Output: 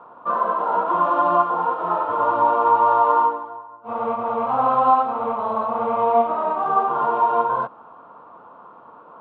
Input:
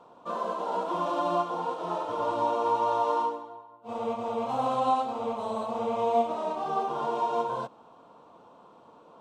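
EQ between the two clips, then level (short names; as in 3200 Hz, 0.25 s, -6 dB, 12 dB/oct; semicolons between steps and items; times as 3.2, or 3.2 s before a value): LPF 2000 Hz 12 dB/oct; bell 1300 Hz +12 dB 1.2 oct; +3.5 dB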